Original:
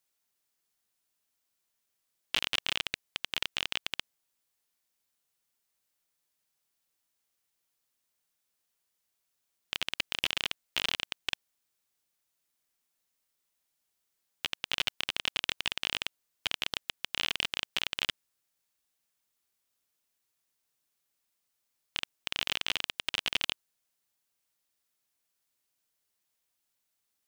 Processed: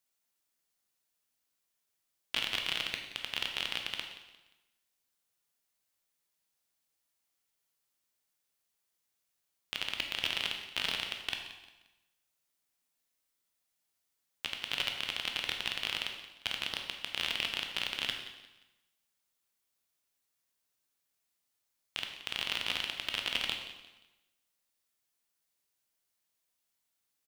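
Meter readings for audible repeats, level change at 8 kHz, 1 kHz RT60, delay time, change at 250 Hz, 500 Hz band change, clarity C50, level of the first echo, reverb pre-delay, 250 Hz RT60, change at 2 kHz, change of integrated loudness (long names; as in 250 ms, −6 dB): 3, −3.5 dB, 1.1 s, 176 ms, −1.0 dB, −1.5 dB, 5.5 dB, −16.0 dB, 7 ms, 1.1 s, −1.5 dB, −1.5 dB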